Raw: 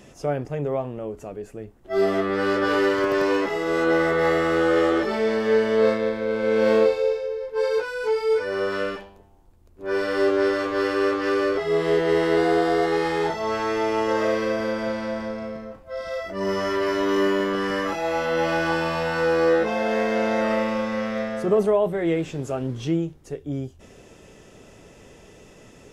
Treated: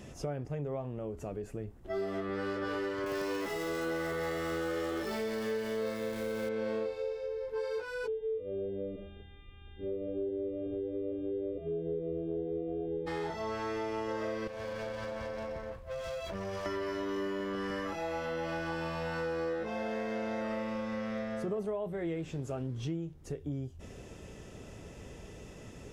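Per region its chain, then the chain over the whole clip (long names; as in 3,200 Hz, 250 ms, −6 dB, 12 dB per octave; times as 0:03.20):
0:03.06–0:06.49: converter with a step at zero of −33.5 dBFS + high-shelf EQ 3,800 Hz +10 dB
0:08.06–0:13.06: Butterworth low-pass 610 Hz 48 dB per octave + hum with harmonics 400 Hz, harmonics 9, −57 dBFS 0 dB per octave + phaser whose notches keep moving one way rising 1.9 Hz
0:14.47–0:16.66: lower of the sound and its delayed copy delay 1.8 ms + downward compressor 5 to 1, threshold −31 dBFS
whole clip: parametric band 62 Hz +8.5 dB 2.9 octaves; downward compressor 4 to 1, threshold −32 dBFS; level −3 dB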